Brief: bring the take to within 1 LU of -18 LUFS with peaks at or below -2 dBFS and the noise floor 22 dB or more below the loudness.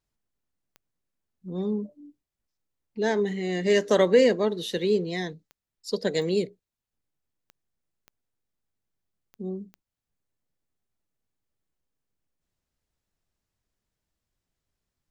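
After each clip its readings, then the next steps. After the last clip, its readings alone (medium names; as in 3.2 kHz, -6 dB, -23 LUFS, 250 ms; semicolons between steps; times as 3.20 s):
clicks found 7; loudness -25.5 LUFS; peak level -8.5 dBFS; loudness target -18.0 LUFS
-> de-click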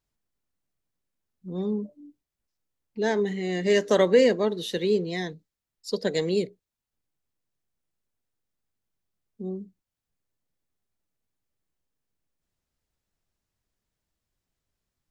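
clicks found 0; loudness -25.5 LUFS; peak level -8.5 dBFS; loudness target -18.0 LUFS
-> trim +7.5 dB; peak limiter -2 dBFS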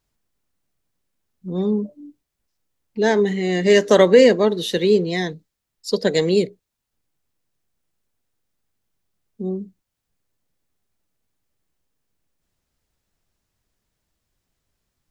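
loudness -18.0 LUFS; peak level -2.0 dBFS; noise floor -80 dBFS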